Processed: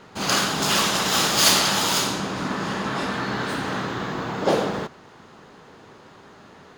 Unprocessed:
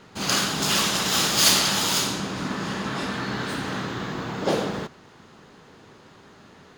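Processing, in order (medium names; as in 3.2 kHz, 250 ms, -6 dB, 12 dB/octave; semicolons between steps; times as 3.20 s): peaking EQ 800 Hz +4.5 dB 2.4 oct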